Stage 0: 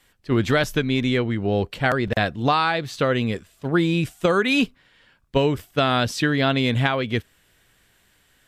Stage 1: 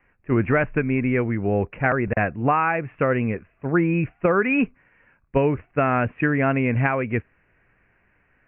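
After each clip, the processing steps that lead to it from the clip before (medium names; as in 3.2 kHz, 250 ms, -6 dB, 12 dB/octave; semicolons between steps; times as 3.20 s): steep low-pass 2.6 kHz 96 dB/octave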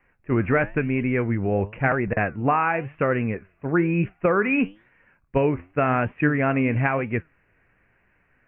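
flange 0.98 Hz, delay 4.8 ms, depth 7 ms, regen +81%; trim +3.5 dB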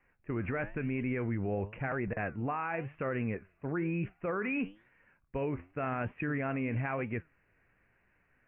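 peak limiter -18.5 dBFS, peak gain reduction 10 dB; trim -7 dB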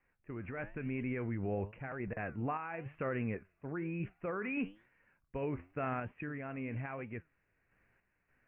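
random-step tremolo; trim -2 dB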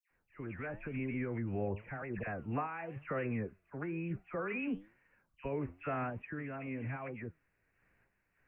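phase dispersion lows, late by 105 ms, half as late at 1.9 kHz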